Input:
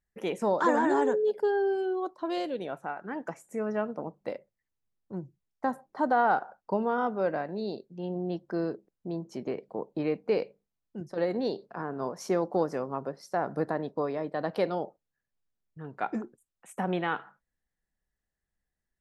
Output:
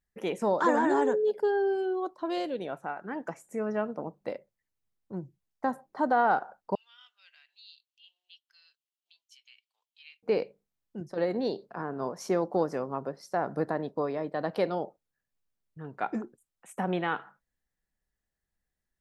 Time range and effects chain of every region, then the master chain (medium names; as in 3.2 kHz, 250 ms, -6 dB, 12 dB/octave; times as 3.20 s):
6.75–10.23 s: ladder high-pass 2.7 kHz, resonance 65% + treble shelf 3.8 kHz +6 dB
whole clip: none